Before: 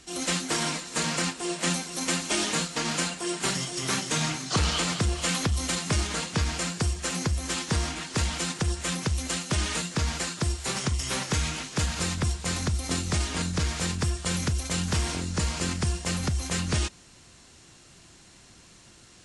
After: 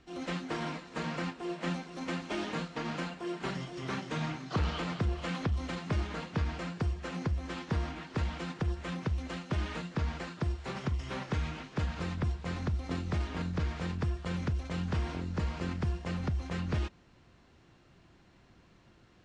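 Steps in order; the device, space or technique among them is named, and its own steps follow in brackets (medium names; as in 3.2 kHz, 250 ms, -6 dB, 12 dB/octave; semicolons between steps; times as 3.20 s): phone in a pocket (low-pass 3.9 kHz 12 dB/octave; treble shelf 2.5 kHz -11 dB); trim -4.5 dB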